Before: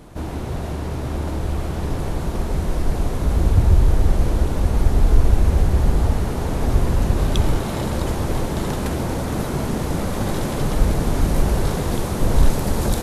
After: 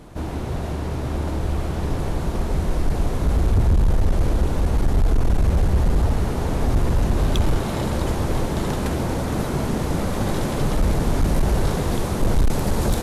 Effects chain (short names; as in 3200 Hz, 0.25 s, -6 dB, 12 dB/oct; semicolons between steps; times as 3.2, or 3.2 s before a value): high shelf 10000 Hz -4 dB; hard clip -12.5 dBFS, distortion -12 dB